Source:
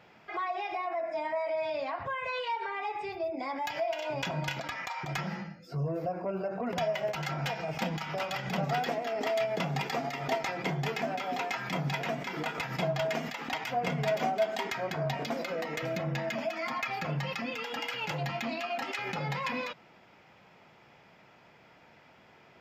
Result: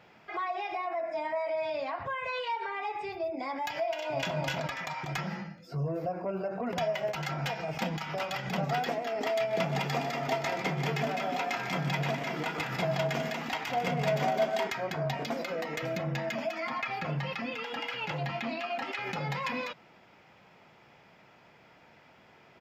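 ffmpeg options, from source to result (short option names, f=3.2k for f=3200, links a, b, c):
-filter_complex "[0:a]asplit=2[a][b];[b]afade=t=in:st=3.85:d=0.01,afade=t=out:st=4.39:d=0.01,aecho=0:1:270|540|810|1080|1350:0.707946|0.247781|0.0867234|0.0303532|0.0106236[c];[a][c]amix=inputs=2:normalize=0,asettb=1/sr,asplit=3[d][e][f];[d]atrim=end=9.384[g];[e]atrim=start=9.38:end=14.68,asetpts=PTS-STARTPTS,afade=t=in:d=0.004:c=qsin,afade=t=out:st=5.296:d=0.004:c=qsin,aecho=1:1:127|148|204:0.2|0.299|0.447,atrim=end_sample=233730[h];[f]atrim=start=14.676[i];[g][h]acrossfade=d=0.004:c1=hsin:c2=qsin[j];[j][i]acrossfade=d=0.004:c1=qsin:c2=hsin,asettb=1/sr,asplit=3[k][l][m];[k]atrim=end=16.604[n];[l]atrim=start=16.6:end=19.06,asetpts=PTS-STARTPTS,afade=t=in:d=0.004:c=qsin,afade=t=out:st=2.456:d=0.004:c=qsin,acrossover=split=4600[o][p];[p]acompressor=threshold=-58dB:ratio=4:attack=1:release=60[q];[o][q]amix=inputs=2:normalize=0[r];[m]atrim=start=19.056[s];[n][r]acrossfade=d=0.004:c1=hsin:c2=qsin[t];[t][s]acrossfade=d=0.004:c1=qsin:c2=hsin"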